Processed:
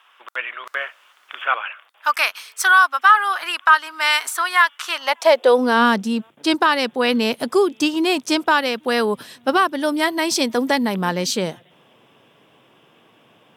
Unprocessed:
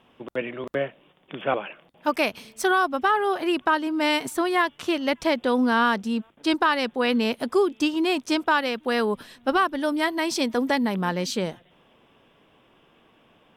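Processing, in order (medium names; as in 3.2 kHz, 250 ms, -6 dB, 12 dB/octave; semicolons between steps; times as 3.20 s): 0.65–1.45 s: added noise brown -49 dBFS; tone controls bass -7 dB, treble +5 dB; high-pass sweep 1.3 kHz -> 120 Hz, 4.89–6.24 s; trim +4.5 dB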